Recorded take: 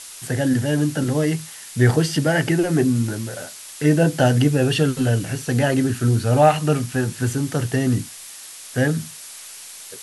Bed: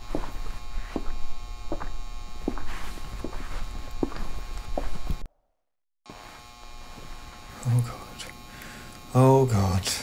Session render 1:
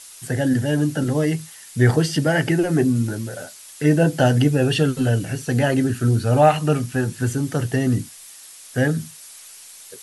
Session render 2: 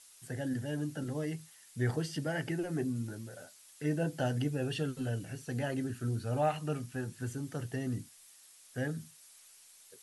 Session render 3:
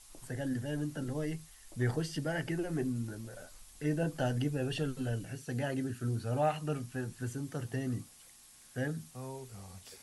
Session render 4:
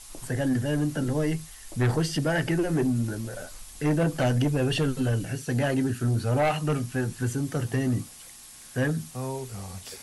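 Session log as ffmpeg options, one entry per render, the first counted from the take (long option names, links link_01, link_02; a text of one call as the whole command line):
ffmpeg -i in.wav -af "afftdn=noise_reduction=6:noise_floor=-39" out.wav
ffmpeg -i in.wav -af "volume=-16dB" out.wav
ffmpeg -i in.wav -i bed.wav -filter_complex "[1:a]volume=-26dB[link_01];[0:a][link_01]amix=inputs=2:normalize=0" out.wav
ffmpeg -i in.wav -af "aeval=exprs='0.119*sin(PI/2*2.24*val(0)/0.119)':channel_layout=same" out.wav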